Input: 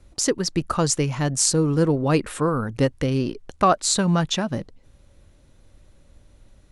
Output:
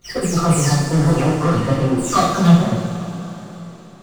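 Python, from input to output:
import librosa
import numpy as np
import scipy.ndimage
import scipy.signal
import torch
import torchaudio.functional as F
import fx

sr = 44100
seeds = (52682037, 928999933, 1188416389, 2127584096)

p1 = fx.spec_delay(x, sr, highs='early', ms=539)
p2 = fx.high_shelf(p1, sr, hz=5000.0, db=-8.5)
p3 = fx.volume_shaper(p2, sr, bpm=90, per_beat=1, depth_db=-4, release_ms=70.0, shape='slow start')
p4 = 10.0 ** (-25.0 / 20.0) * np.tanh(p3 / 10.0 ** (-25.0 / 20.0))
p5 = fx.power_curve(p4, sr, exponent=2.0)
p6 = fx.backlash(p5, sr, play_db=-45.0)
p7 = fx.stretch_vocoder(p6, sr, factor=0.6)
p8 = p7 + fx.echo_feedback(p7, sr, ms=64, feedback_pct=60, wet_db=-6, dry=0)
p9 = fx.rev_double_slope(p8, sr, seeds[0], early_s=0.33, late_s=4.5, knee_db=-18, drr_db=-9.0)
y = p9 * 10.0 ** (4.0 / 20.0)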